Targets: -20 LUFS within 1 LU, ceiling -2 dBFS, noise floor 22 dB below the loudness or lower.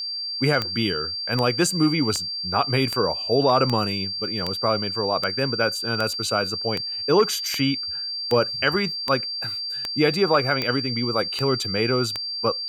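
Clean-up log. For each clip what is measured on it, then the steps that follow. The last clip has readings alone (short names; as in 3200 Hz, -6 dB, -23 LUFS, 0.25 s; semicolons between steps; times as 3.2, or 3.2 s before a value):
clicks 16; steady tone 4700 Hz; tone level -27 dBFS; loudness -22.5 LUFS; peak -6.5 dBFS; loudness target -20.0 LUFS
-> de-click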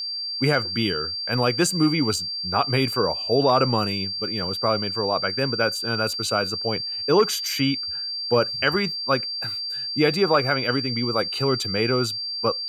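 clicks 0; steady tone 4700 Hz; tone level -27 dBFS
-> notch 4700 Hz, Q 30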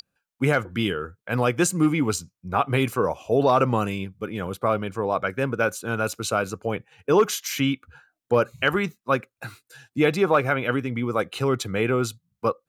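steady tone none; loudness -24.0 LUFS; peak -7.5 dBFS; loudness target -20.0 LUFS
-> gain +4 dB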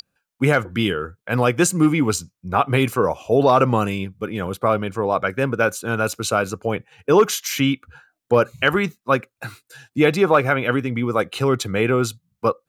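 loudness -20.0 LUFS; peak -3.5 dBFS; noise floor -81 dBFS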